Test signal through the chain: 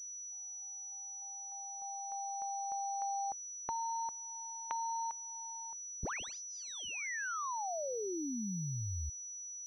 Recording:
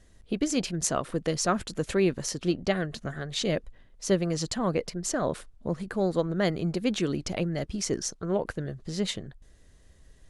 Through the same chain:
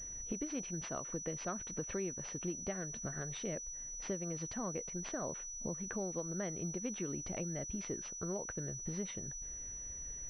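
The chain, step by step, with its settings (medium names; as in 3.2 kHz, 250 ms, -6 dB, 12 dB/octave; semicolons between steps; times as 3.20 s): compression 4:1, threshold -43 dBFS; class-D stage that switches slowly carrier 5.9 kHz; trim +2.5 dB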